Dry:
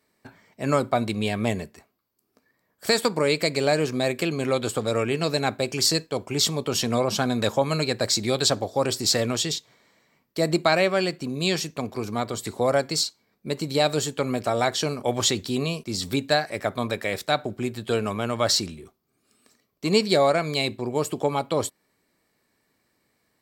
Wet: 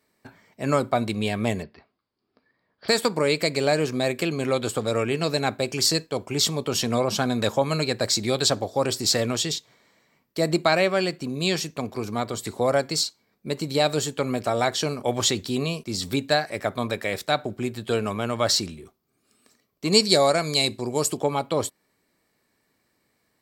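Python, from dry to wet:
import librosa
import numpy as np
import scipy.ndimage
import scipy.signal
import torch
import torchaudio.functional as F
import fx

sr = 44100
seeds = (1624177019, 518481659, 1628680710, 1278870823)

y = fx.cheby1_lowpass(x, sr, hz=5000.0, order=6, at=(1.62, 2.88), fade=0.02)
y = fx.band_shelf(y, sr, hz=7000.0, db=9.5, octaves=1.7, at=(19.92, 21.17))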